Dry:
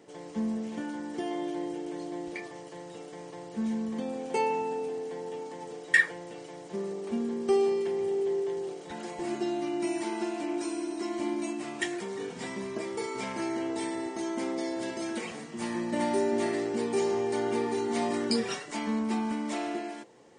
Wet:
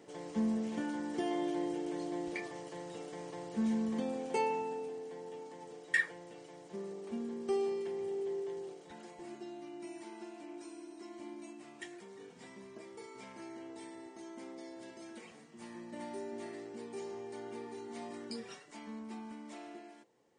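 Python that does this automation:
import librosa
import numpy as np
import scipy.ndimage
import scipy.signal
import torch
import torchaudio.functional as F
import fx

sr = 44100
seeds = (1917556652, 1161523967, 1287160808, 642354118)

y = fx.gain(x, sr, db=fx.line((3.95, -1.5), (4.98, -8.5), (8.59, -8.5), (9.43, -15.5)))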